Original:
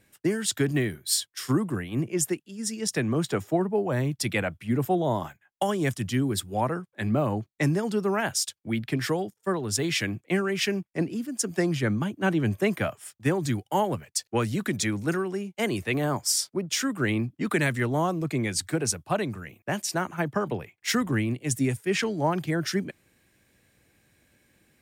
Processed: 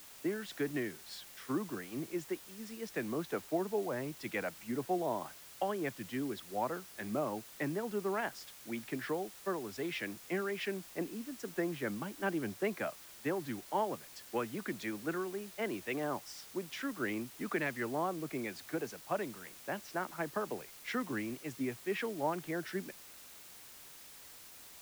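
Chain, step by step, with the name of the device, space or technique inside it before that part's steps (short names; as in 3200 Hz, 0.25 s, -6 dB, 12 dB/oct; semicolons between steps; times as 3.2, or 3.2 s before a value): wax cylinder (BPF 260–2400 Hz; wow and flutter; white noise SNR 15 dB); gain -8 dB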